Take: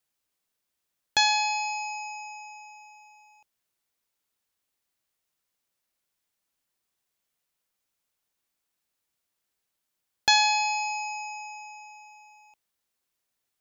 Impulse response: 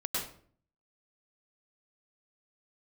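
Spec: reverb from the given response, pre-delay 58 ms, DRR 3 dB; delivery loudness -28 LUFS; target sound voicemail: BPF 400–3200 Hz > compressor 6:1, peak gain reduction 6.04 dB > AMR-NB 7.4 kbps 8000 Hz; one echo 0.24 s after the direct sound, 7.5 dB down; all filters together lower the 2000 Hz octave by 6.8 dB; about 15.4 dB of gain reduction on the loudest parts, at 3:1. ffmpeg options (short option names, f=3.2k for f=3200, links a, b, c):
-filter_complex "[0:a]equalizer=f=2k:t=o:g=-8,acompressor=threshold=-39dB:ratio=3,aecho=1:1:240:0.422,asplit=2[a][b];[1:a]atrim=start_sample=2205,adelay=58[c];[b][c]afir=irnorm=-1:irlink=0,volume=-8dB[d];[a][d]amix=inputs=2:normalize=0,highpass=400,lowpass=3.2k,acompressor=threshold=-37dB:ratio=6,volume=14dB" -ar 8000 -c:a libopencore_amrnb -b:a 7400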